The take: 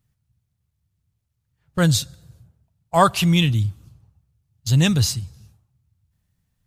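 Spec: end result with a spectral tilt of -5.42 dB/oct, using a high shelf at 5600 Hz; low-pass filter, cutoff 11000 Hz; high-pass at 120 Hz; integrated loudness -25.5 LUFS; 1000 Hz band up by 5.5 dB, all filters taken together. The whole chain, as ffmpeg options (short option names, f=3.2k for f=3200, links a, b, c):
-af "highpass=120,lowpass=11k,equalizer=f=1k:t=o:g=7,highshelf=f=5.6k:g=-6.5,volume=-7dB"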